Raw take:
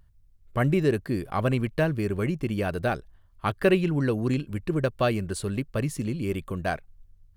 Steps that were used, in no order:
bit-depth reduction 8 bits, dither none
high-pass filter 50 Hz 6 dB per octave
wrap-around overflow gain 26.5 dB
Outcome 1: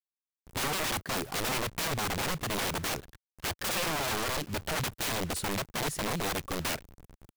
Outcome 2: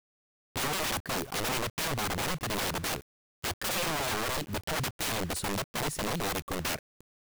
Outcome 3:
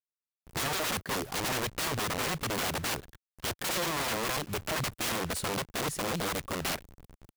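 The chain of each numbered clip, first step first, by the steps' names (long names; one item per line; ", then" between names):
bit-depth reduction, then high-pass filter, then wrap-around overflow
high-pass filter, then wrap-around overflow, then bit-depth reduction
wrap-around overflow, then bit-depth reduction, then high-pass filter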